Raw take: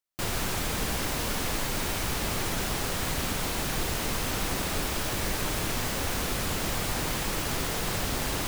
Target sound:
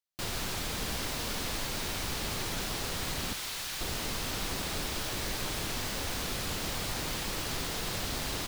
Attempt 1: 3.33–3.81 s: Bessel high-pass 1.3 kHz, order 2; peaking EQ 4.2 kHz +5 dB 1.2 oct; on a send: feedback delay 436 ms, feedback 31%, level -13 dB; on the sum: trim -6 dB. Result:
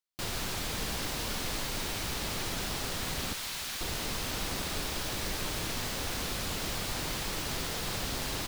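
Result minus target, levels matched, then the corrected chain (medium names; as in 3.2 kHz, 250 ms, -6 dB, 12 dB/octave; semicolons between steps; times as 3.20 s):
echo 205 ms early
3.33–3.81 s: Bessel high-pass 1.3 kHz, order 2; peaking EQ 4.2 kHz +5 dB 1.2 oct; on a send: feedback delay 641 ms, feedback 31%, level -13 dB; on the sum: trim -6 dB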